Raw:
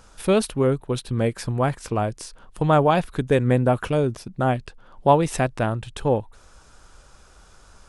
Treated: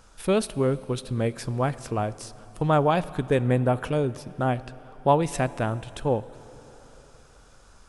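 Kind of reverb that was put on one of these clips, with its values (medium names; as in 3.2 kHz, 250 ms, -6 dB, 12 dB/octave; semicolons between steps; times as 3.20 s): plate-style reverb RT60 3.9 s, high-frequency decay 0.9×, DRR 16.5 dB; trim -3.5 dB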